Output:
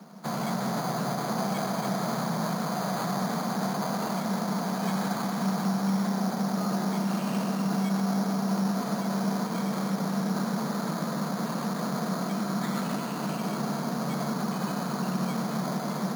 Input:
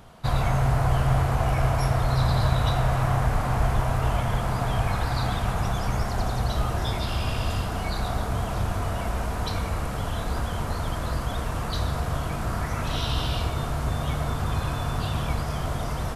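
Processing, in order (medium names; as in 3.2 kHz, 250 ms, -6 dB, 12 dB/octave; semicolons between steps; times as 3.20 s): steep high-pass 150 Hz 96 dB/octave; peaking EQ 200 Hz +13.5 dB 0.43 oct; peak limiter -21 dBFS, peak gain reduction 7 dB; distance through air 190 m; reverberation RT60 3.3 s, pre-delay 84 ms, DRR 7 dB; careless resampling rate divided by 8×, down filtered, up hold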